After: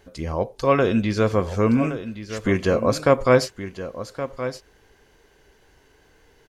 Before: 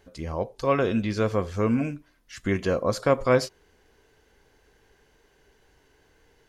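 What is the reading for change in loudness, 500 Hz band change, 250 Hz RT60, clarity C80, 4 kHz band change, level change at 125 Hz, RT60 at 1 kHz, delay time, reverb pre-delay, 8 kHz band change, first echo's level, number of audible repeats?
+3.5 dB, +5.0 dB, no reverb audible, no reverb audible, +5.0 dB, +4.5 dB, no reverb audible, 1,120 ms, no reverb audible, +5.0 dB, −12.0 dB, 1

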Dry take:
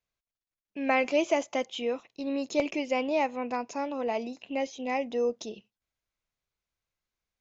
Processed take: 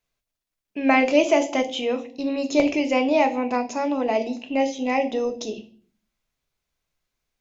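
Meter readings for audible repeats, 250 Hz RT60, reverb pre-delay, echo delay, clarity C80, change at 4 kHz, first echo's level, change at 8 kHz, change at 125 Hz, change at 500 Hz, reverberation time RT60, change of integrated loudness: no echo audible, 0.70 s, 3 ms, no echo audible, 19.0 dB, +7.5 dB, no echo audible, can't be measured, can't be measured, +7.0 dB, 0.55 s, +7.5 dB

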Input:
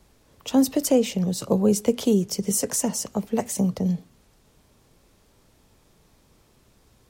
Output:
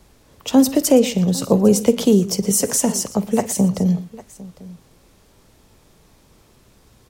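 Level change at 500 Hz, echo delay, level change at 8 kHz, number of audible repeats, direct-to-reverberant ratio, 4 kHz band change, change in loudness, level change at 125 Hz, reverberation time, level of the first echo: +6.0 dB, 50 ms, +6.0 dB, 3, no reverb audible, +6.0 dB, +6.0 dB, +6.5 dB, no reverb audible, −19.5 dB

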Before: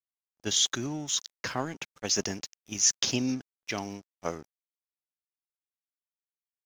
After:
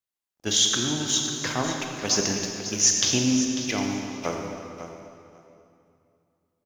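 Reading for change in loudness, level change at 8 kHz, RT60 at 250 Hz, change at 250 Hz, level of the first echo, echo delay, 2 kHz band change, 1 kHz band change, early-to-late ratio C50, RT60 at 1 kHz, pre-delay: +6.0 dB, +6.0 dB, 2.9 s, +8.0 dB, −11.0 dB, 546 ms, +6.0 dB, +6.0 dB, 1.5 dB, 2.6 s, 22 ms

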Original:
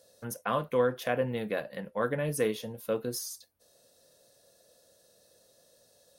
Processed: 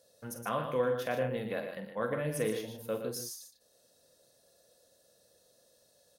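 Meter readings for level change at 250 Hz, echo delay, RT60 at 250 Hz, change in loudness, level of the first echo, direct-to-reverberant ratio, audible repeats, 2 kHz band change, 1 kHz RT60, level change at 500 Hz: −3.0 dB, 46 ms, no reverb audible, −3.0 dB, −9.0 dB, no reverb audible, 3, −3.5 dB, no reverb audible, −3.0 dB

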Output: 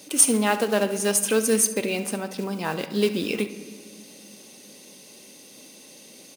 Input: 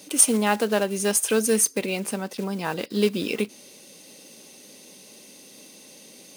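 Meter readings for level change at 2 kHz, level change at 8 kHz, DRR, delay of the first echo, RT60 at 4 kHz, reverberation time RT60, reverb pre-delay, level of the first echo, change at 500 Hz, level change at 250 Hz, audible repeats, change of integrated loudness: +0.5 dB, 0.0 dB, 9.5 dB, 70 ms, 1.1 s, 1.8 s, 3 ms, −15.5 dB, +0.5 dB, 0.0 dB, 1, 0.0 dB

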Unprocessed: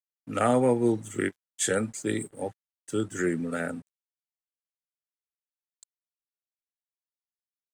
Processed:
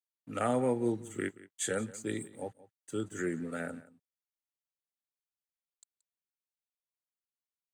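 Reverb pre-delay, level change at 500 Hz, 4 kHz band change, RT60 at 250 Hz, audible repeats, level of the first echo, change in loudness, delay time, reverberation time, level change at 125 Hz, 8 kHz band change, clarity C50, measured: no reverb audible, −7.0 dB, −7.0 dB, no reverb audible, 1, −19.0 dB, −7.0 dB, 177 ms, no reverb audible, −7.0 dB, −7.0 dB, no reverb audible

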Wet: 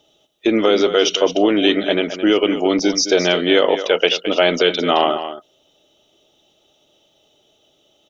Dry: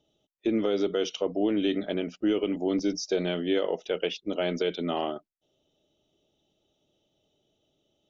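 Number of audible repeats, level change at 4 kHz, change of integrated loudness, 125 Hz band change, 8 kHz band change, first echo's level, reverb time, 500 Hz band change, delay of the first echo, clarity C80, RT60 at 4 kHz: 1, +17.5 dB, +12.0 dB, +6.5 dB, can't be measured, −11.0 dB, no reverb audible, +12.0 dB, 217 ms, no reverb audible, no reverb audible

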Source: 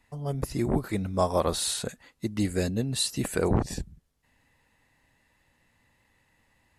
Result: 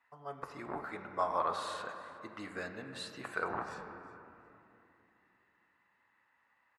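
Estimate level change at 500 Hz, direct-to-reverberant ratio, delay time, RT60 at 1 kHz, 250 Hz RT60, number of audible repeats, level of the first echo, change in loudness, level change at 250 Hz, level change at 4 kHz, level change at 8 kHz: −11.5 dB, 4.0 dB, 364 ms, 2.8 s, 3.9 s, 1, −20.0 dB, −11.0 dB, −18.5 dB, −15.0 dB, −23.0 dB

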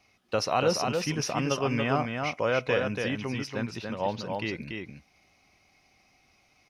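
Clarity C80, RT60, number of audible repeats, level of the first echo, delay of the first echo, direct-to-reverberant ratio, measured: no reverb audible, no reverb audible, 1, −4.5 dB, 285 ms, no reverb audible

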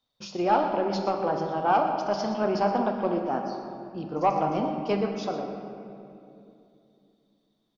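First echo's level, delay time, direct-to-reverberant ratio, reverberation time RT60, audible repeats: −13.5 dB, 121 ms, 2.5 dB, 2.7 s, 1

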